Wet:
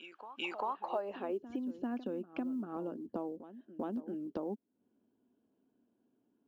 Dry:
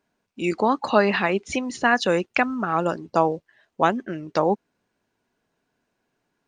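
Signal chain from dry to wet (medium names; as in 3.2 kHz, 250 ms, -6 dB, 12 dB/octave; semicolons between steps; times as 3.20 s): band-pass sweep 1.6 kHz -> 250 Hz, 0.41–1.62 s; compression 4:1, threshold -45 dBFS, peak gain reduction 24 dB; graphic EQ with 31 bands 160 Hz -11 dB, 2 kHz -8 dB, 3.15 kHz +11 dB; short-mantissa float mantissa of 6-bit; on a send: reverse echo 394 ms -13.5 dB; on the sum: trim +7 dB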